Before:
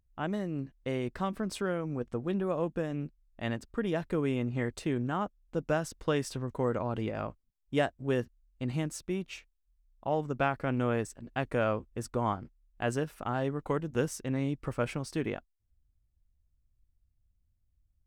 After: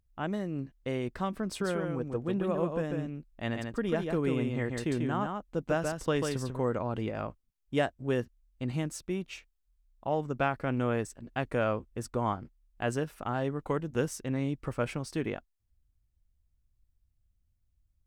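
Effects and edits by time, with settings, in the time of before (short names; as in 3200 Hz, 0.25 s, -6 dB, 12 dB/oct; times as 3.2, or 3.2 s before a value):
1.46–6.59 echo 0.142 s -4.5 dB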